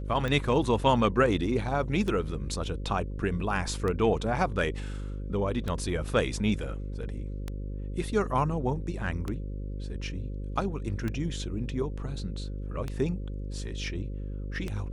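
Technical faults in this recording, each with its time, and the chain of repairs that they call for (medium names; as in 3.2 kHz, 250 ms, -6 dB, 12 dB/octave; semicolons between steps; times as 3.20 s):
buzz 50 Hz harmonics 11 -35 dBFS
tick 33 1/3 rpm -19 dBFS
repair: de-click; de-hum 50 Hz, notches 11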